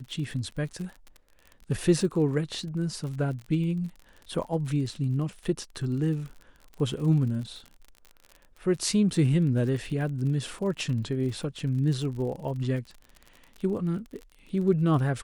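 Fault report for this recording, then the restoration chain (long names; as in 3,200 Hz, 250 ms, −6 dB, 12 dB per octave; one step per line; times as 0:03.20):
surface crackle 43 per second −36 dBFS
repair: click removal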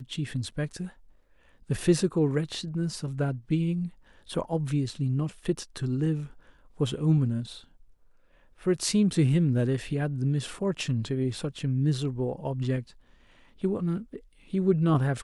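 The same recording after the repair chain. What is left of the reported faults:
none of them is left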